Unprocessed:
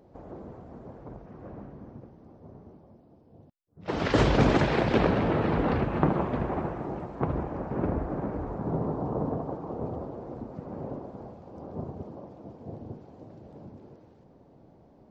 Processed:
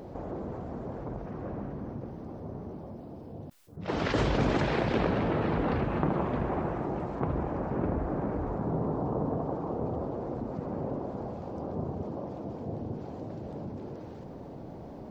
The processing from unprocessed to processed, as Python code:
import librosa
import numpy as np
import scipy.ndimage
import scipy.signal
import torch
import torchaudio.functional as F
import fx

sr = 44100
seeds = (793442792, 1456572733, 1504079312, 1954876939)

y = fx.env_flatten(x, sr, amount_pct=50)
y = y * 10.0 ** (-6.5 / 20.0)